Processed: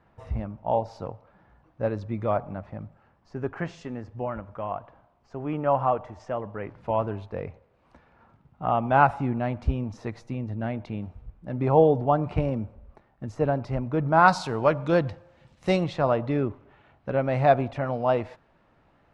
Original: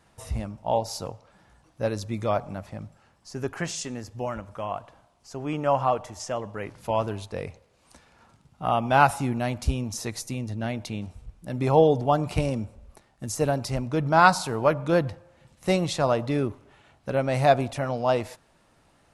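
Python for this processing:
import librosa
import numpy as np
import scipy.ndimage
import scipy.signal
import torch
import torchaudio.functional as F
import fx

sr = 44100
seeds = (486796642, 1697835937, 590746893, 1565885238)

y = fx.lowpass(x, sr, hz=fx.steps((0.0, 1800.0), (14.28, 4800.0), (15.84, 2300.0)), slope=12)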